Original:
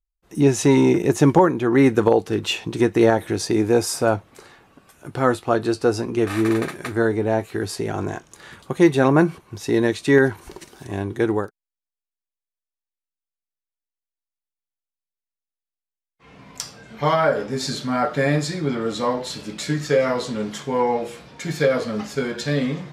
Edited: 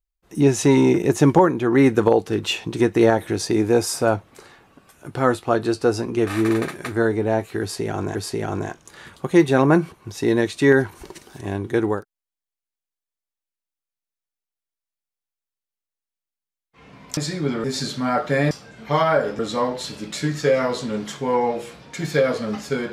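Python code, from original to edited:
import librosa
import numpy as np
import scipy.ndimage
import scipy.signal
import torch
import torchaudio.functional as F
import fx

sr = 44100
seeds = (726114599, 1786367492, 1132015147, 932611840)

y = fx.edit(x, sr, fx.repeat(start_s=7.61, length_s=0.54, count=2),
    fx.swap(start_s=16.63, length_s=0.88, other_s=18.38, other_length_s=0.47), tone=tone)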